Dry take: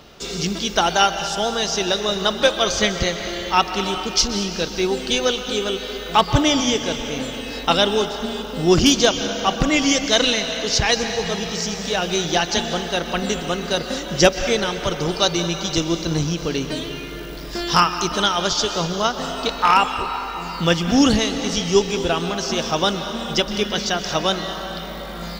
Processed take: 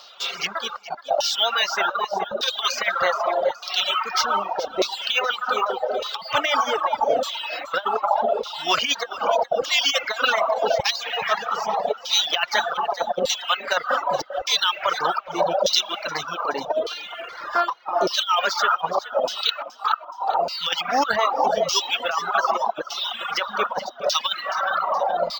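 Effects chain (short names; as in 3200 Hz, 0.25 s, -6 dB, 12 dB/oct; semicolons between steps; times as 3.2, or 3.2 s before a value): LFO band-pass saw down 0.83 Hz 570–4900 Hz; band shelf 850 Hz +13.5 dB; reverb removal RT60 0.97 s; high shelf 3200 Hz +3 dB; negative-ratio compressor -25 dBFS, ratio -0.5; frequency-shifting echo 0.422 s, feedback 40%, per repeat +35 Hz, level -12.5 dB; reverb removal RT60 1.5 s; decimation joined by straight lines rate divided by 2×; gain +3 dB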